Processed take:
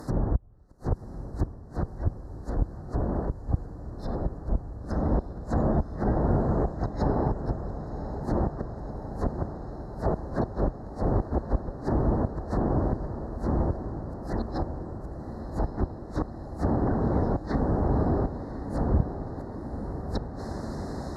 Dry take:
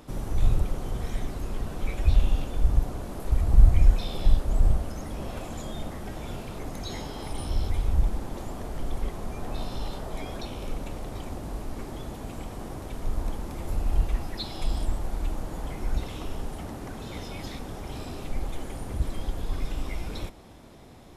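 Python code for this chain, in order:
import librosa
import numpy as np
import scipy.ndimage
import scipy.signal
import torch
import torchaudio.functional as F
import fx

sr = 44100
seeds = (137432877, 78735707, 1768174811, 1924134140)

p1 = fx.rider(x, sr, range_db=5, speed_s=0.5)
p2 = fx.peak_eq(p1, sr, hz=2500.0, db=7.5, octaves=0.31)
p3 = fx.gate_flip(p2, sr, shuts_db=-19.0, range_db=-36)
p4 = scipy.signal.sosfilt(scipy.signal.ellip(3, 1.0, 40, [1800.0, 4200.0], 'bandstop', fs=sr, output='sos'), p3)
p5 = fx.env_lowpass_down(p4, sr, base_hz=980.0, full_db=-30.0)
p6 = scipy.signal.sosfilt(scipy.signal.butter(2, 42.0, 'highpass', fs=sr, output='sos'), p5)
p7 = p6 + fx.echo_diffused(p6, sr, ms=1083, feedback_pct=75, wet_db=-10.5, dry=0)
p8 = fx.doppler_dist(p7, sr, depth_ms=0.14)
y = F.gain(torch.from_numpy(p8), 8.5).numpy()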